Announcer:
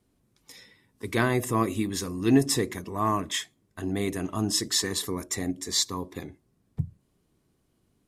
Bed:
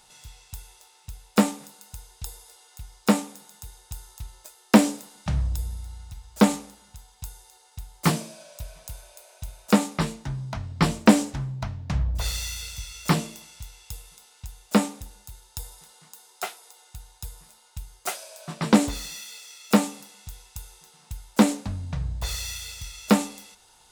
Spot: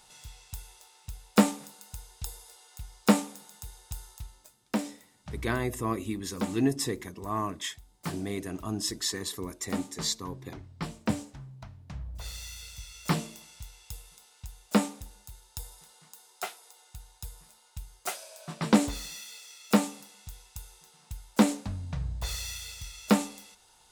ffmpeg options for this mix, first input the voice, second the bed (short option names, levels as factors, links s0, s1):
-filter_complex "[0:a]adelay=4300,volume=0.531[s0];[1:a]volume=2.82,afade=t=out:st=4.04:d=0.54:silence=0.223872,afade=t=in:st=12.04:d=1.47:silence=0.298538[s1];[s0][s1]amix=inputs=2:normalize=0"